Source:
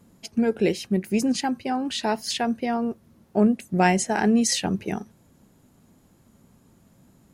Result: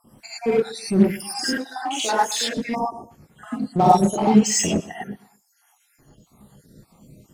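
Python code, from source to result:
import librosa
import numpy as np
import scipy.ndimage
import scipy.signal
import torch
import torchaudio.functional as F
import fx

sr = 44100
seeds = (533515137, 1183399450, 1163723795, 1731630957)

p1 = fx.spec_dropout(x, sr, seeds[0], share_pct=73)
p2 = fx.env_lowpass(p1, sr, base_hz=2200.0, full_db=-18.5, at=(3.55, 4.67), fade=0.02)
p3 = p2 + fx.echo_feedback(p2, sr, ms=123, feedback_pct=32, wet_db=-21.0, dry=0)
p4 = fx.rev_gated(p3, sr, seeds[1], gate_ms=130, shape='rising', drr_db=-7.5)
p5 = 10.0 ** (-25.5 / 20.0) * (np.abs((p4 / 10.0 ** (-25.5 / 20.0) + 3.0) % 4.0 - 2.0) - 1.0)
p6 = p4 + F.gain(torch.from_numpy(p5), -12.0).numpy()
p7 = fx.highpass(p6, sr, hz=460.0, slope=12, at=(1.57, 2.57))
p8 = fx.spec_erase(p7, sr, start_s=2.74, length_s=0.36, low_hz=1200.0, high_hz=5100.0)
y = F.gain(torch.from_numpy(p8), 1.5).numpy()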